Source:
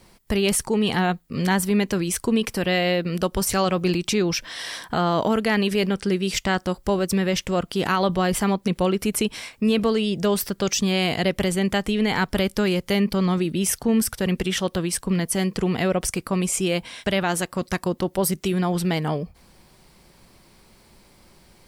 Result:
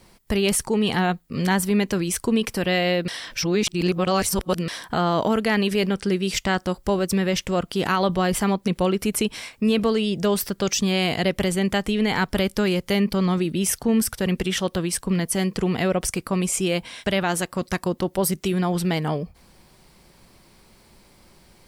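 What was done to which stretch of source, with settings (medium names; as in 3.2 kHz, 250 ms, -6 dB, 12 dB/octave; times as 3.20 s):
3.08–4.68 s: reverse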